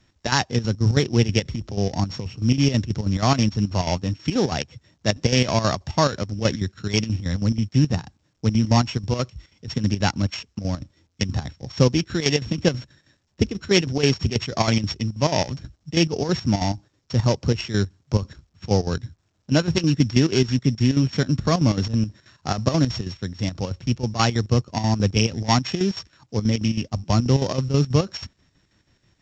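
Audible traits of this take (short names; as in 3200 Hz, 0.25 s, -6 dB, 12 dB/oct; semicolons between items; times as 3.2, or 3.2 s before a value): a buzz of ramps at a fixed pitch in blocks of 8 samples; chopped level 6.2 Hz, depth 65%, duty 65%; A-law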